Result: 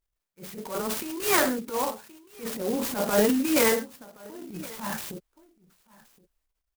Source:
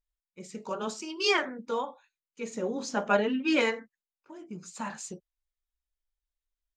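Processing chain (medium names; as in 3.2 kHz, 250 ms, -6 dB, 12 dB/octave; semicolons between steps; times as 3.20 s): delay 1071 ms -23.5 dB; transient shaper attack -12 dB, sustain +8 dB; sampling jitter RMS 0.079 ms; trim +4.5 dB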